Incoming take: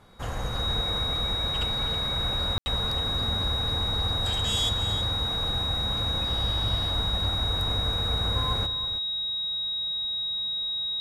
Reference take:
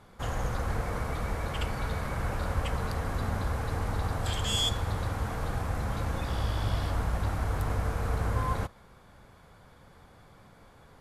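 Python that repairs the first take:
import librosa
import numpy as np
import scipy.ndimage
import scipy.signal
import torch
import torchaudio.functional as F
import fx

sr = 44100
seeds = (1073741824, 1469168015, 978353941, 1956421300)

y = fx.notch(x, sr, hz=3800.0, q=30.0)
y = fx.fix_ambience(y, sr, seeds[0], print_start_s=0.0, print_end_s=0.5, start_s=2.58, end_s=2.66)
y = fx.fix_echo_inverse(y, sr, delay_ms=322, level_db=-11.5)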